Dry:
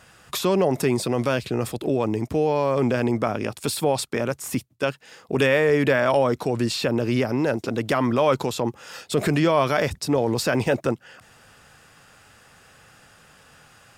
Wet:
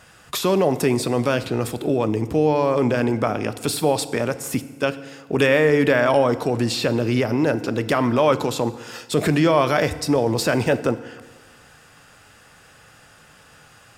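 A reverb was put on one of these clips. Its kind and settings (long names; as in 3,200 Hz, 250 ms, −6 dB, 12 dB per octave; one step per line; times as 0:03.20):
feedback delay network reverb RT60 1.4 s, low-frequency decay 1×, high-frequency decay 0.75×, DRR 12 dB
level +2 dB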